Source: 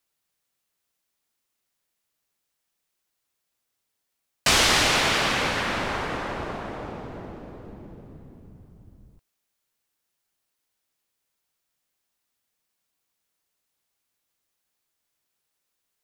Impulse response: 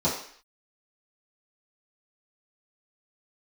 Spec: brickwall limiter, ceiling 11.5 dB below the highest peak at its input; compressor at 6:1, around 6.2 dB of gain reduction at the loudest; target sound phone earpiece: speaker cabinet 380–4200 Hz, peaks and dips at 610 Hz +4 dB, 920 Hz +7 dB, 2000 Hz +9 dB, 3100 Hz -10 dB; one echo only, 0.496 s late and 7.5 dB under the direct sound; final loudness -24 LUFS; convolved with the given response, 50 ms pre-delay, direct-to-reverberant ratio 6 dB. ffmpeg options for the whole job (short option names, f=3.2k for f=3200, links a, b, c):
-filter_complex "[0:a]acompressor=threshold=-22dB:ratio=6,alimiter=limit=-20.5dB:level=0:latency=1,aecho=1:1:496:0.422,asplit=2[a][b];[1:a]atrim=start_sample=2205,adelay=50[c];[b][c]afir=irnorm=-1:irlink=0,volume=-18.5dB[d];[a][d]amix=inputs=2:normalize=0,highpass=380,equalizer=f=610:t=q:w=4:g=4,equalizer=f=920:t=q:w=4:g=7,equalizer=f=2k:t=q:w=4:g=9,equalizer=f=3.1k:t=q:w=4:g=-10,lowpass=f=4.2k:w=0.5412,lowpass=f=4.2k:w=1.3066,volume=3.5dB"